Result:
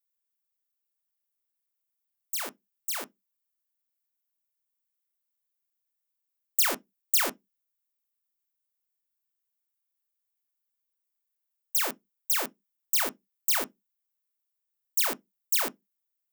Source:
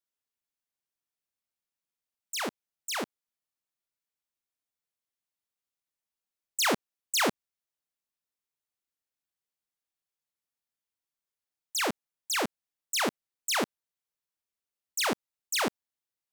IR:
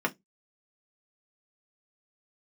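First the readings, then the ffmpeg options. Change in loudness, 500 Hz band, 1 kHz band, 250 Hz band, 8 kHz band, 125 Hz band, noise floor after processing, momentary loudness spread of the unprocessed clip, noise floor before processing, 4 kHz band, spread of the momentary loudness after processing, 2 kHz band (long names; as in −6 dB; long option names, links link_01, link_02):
+3.5 dB, −5.5 dB, −4.0 dB, −9.0 dB, +2.0 dB, below −10 dB, −83 dBFS, 10 LU, below −85 dBFS, −2.5 dB, 13 LU, −3.0 dB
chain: -filter_complex "[0:a]aeval=exprs='0.106*(cos(1*acos(clip(val(0)/0.106,-1,1)))-cos(1*PI/2))+0.0376*(cos(4*acos(clip(val(0)/0.106,-1,1)))-cos(4*PI/2))+0.00211*(cos(5*acos(clip(val(0)/0.106,-1,1)))-cos(5*PI/2))+0.0119*(cos(6*acos(clip(val(0)/0.106,-1,1)))-cos(6*PI/2))+0.00473*(cos(7*acos(clip(val(0)/0.106,-1,1)))-cos(7*PI/2))':channel_layout=same,aemphasis=mode=production:type=bsi,asplit=2[link_01][link_02];[1:a]atrim=start_sample=2205,lowpass=8100[link_03];[link_02][link_03]afir=irnorm=-1:irlink=0,volume=-16dB[link_04];[link_01][link_04]amix=inputs=2:normalize=0,volume=-7.5dB"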